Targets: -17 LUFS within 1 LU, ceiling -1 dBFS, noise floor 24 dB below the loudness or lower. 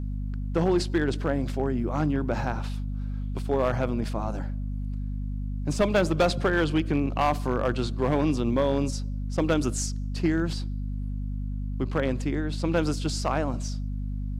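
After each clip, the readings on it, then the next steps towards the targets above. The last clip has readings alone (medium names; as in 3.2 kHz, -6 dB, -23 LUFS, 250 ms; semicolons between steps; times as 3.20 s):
clipped samples 0.6%; clipping level -16.0 dBFS; hum 50 Hz; highest harmonic 250 Hz; hum level -28 dBFS; loudness -27.5 LUFS; peak level -16.0 dBFS; loudness target -17.0 LUFS
-> clip repair -16 dBFS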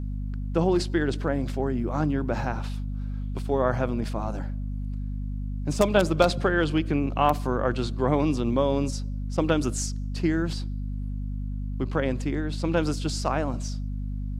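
clipped samples 0.0%; hum 50 Hz; highest harmonic 250 Hz; hum level -28 dBFS
-> hum notches 50/100/150/200/250 Hz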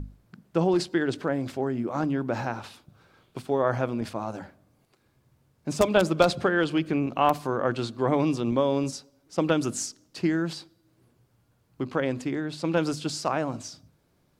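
hum not found; loudness -27.0 LUFS; peak level -7.0 dBFS; loudness target -17.0 LUFS
-> trim +10 dB; peak limiter -1 dBFS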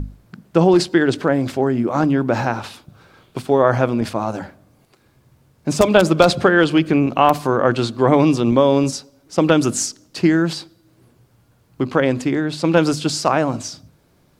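loudness -17.5 LUFS; peak level -1.0 dBFS; noise floor -57 dBFS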